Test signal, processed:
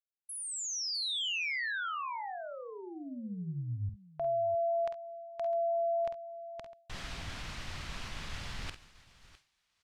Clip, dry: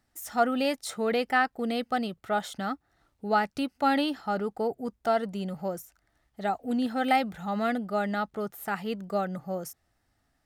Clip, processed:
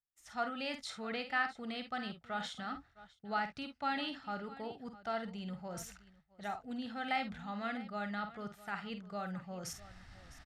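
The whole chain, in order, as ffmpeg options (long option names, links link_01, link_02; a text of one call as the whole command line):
ffmpeg -i in.wav -af "lowpass=4400,areverse,acompressor=mode=upward:threshold=-26dB:ratio=2.5,areverse,equalizer=frequency=410:width_type=o:width=2.3:gain=-12,aecho=1:1:49|67|656:0.376|0.126|0.141,agate=range=-33dB:threshold=-48dB:ratio=3:detection=peak,volume=-5.5dB" out.wav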